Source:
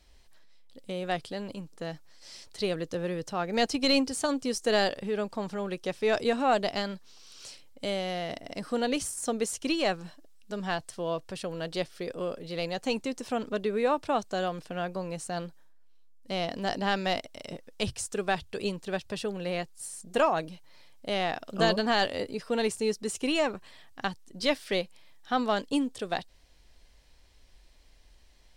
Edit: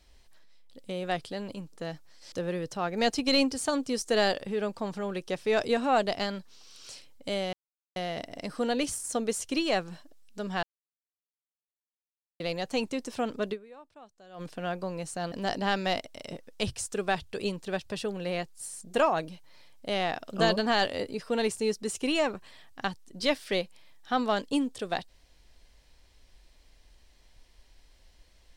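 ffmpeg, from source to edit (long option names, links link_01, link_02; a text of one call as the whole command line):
ffmpeg -i in.wav -filter_complex "[0:a]asplit=8[link_01][link_02][link_03][link_04][link_05][link_06][link_07][link_08];[link_01]atrim=end=2.322[link_09];[link_02]atrim=start=2.878:end=8.09,asetpts=PTS-STARTPTS,afade=type=out:start_time=5.208:duration=0.004:curve=hsin,apad=pad_dur=0.43[link_10];[link_03]atrim=start=8.09:end=10.76,asetpts=PTS-STARTPTS,afade=type=in:duration=0.004:curve=hsin,afade=type=out:start_time=2.666:duration=0.004:curve=hsin[link_11];[link_04]atrim=start=10.76:end=12.53,asetpts=PTS-STARTPTS,volume=0[link_12];[link_05]atrim=start=12.53:end=13.96,asetpts=PTS-STARTPTS,afade=type=in:duration=0.004:curve=hsin,afade=type=out:start_time=1.12:duration=0.31:curve=exp:silence=0.0668344[link_13];[link_06]atrim=start=13.96:end=14.23,asetpts=PTS-STARTPTS,volume=-23.5dB[link_14];[link_07]atrim=start=14.23:end=15.452,asetpts=PTS-STARTPTS,afade=type=in:duration=0.31:curve=exp:silence=0.0668344[link_15];[link_08]atrim=start=16.518[link_16];[link_10][link_11][link_12][link_13][link_14][link_15]concat=n=6:v=0:a=1[link_17];[link_09][link_17]acrossfade=duration=0.004:curve1=hsin:curve2=hsin[link_18];[link_18][link_16]acrossfade=duration=0.004:curve1=hsin:curve2=hsin" out.wav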